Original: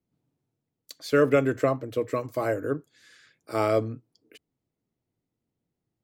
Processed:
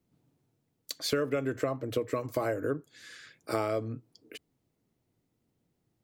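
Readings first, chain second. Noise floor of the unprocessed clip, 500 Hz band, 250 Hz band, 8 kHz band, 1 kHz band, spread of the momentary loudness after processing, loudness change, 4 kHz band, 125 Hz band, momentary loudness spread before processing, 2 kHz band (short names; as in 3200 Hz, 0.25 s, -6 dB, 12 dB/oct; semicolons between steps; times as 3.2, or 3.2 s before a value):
-85 dBFS, -6.5 dB, -6.0 dB, n/a, -6.0 dB, 19 LU, -6.5 dB, +4.0 dB, -5.5 dB, 13 LU, -6.5 dB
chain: compressor 8:1, threshold -33 dBFS, peak gain reduction 17 dB; gain +6 dB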